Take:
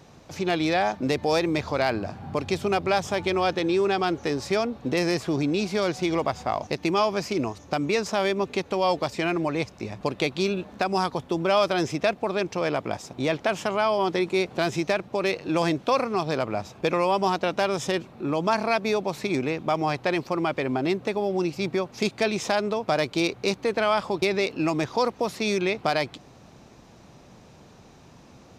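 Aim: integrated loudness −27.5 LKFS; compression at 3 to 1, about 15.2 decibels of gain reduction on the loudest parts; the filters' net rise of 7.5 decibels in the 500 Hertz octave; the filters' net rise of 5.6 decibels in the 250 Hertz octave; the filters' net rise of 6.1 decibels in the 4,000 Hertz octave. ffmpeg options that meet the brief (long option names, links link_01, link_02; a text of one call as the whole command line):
ffmpeg -i in.wav -af "equalizer=frequency=250:width_type=o:gain=4,equalizer=frequency=500:width_type=o:gain=8.5,equalizer=frequency=4000:width_type=o:gain=7.5,acompressor=threshold=-34dB:ratio=3,volume=6dB" out.wav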